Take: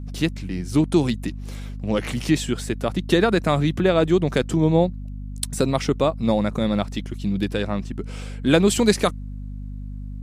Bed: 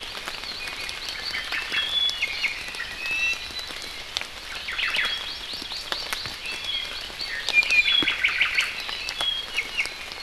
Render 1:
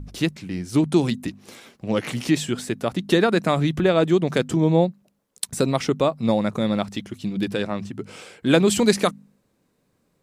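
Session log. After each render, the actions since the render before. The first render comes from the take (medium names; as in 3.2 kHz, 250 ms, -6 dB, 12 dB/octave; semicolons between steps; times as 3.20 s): de-hum 50 Hz, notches 5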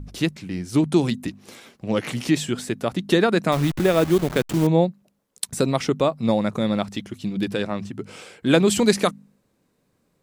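3.52–4.67 s: send-on-delta sampling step -27 dBFS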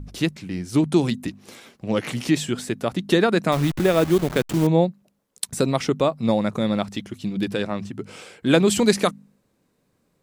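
no audible change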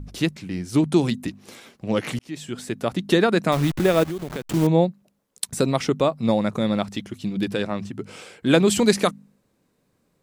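2.19–2.86 s: fade in; 4.03–4.51 s: compression, threshold -26 dBFS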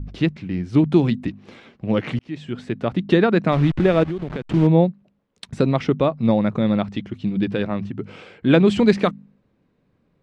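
Chebyshev low-pass 2.8 kHz, order 2; bass shelf 320 Hz +7 dB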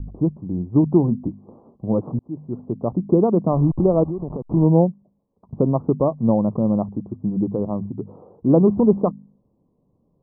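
local Wiener filter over 15 samples; steep low-pass 1.1 kHz 72 dB/octave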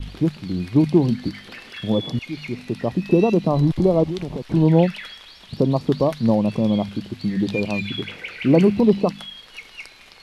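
add bed -11.5 dB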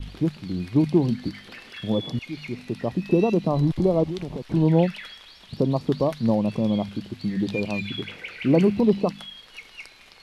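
trim -3.5 dB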